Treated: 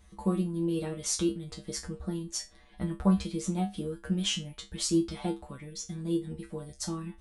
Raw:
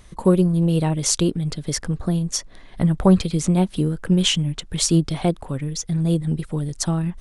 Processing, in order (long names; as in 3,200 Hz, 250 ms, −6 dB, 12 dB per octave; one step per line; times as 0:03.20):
tuned comb filter 67 Hz, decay 0.22 s, harmonics odd, mix 100%
level −1 dB